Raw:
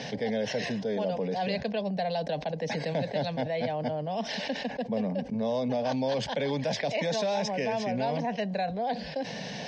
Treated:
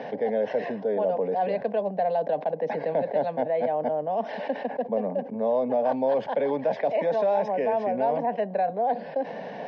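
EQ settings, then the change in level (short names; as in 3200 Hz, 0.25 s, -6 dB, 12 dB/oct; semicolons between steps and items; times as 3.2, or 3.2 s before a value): HPF 360 Hz 12 dB/oct; LPF 1100 Hz 12 dB/oct; +7.0 dB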